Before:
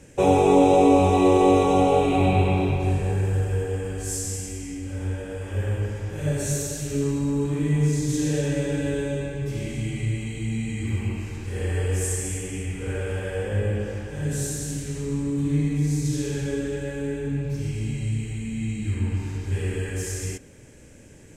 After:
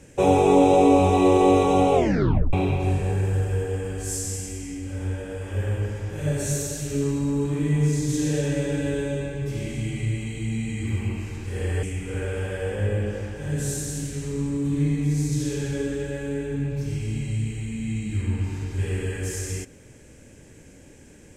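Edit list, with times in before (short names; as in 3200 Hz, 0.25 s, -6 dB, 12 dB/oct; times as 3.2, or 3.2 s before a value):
1.94 tape stop 0.59 s
11.83–12.56 cut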